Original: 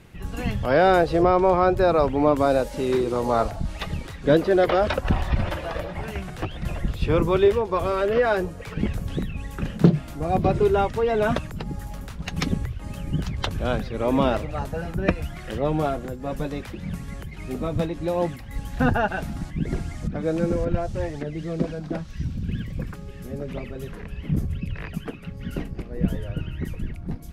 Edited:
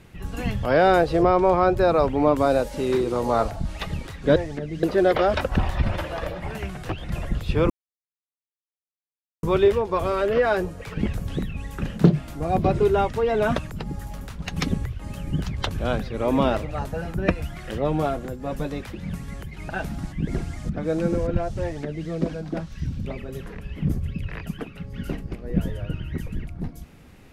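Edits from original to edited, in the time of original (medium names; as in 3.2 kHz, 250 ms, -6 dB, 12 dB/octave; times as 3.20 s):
7.23 s: insert silence 1.73 s
17.49–19.07 s: delete
21.00–21.47 s: copy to 4.36 s
22.44–23.53 s: delete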